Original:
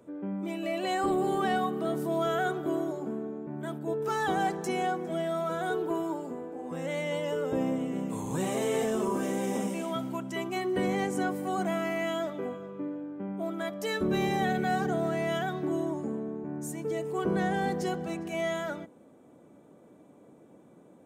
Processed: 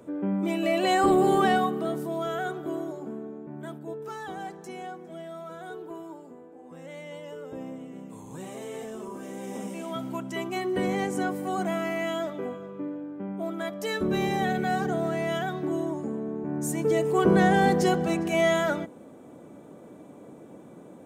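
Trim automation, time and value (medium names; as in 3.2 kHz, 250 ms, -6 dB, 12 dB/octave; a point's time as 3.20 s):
1.39 s +7 dB
2.14 s -2 dB
3.65 s -2 dB
4.26 s -9 dB
9.19 s -9 dB
10.16 s +1.5 dB
16.13 s +1.5 dB
16.80 s +8.5 dB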